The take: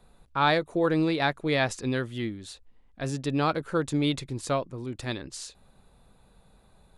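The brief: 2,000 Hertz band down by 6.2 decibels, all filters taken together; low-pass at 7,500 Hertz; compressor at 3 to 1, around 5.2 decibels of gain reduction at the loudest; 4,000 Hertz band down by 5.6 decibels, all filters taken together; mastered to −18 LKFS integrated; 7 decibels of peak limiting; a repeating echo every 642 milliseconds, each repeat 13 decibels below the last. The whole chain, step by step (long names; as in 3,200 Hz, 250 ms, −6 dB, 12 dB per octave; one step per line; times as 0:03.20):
low-pass filter 7,500 Hz
parametric band 2,000 Hz −7.5 dB
parametric band 4,000 Hz −4 dB
downward compressor 3 to 1, threshold −28 dBFS
brickwall limiter −26.5 dBFS
repeating echo 642 ms, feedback 22%, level −13 dB
level +18.5 dB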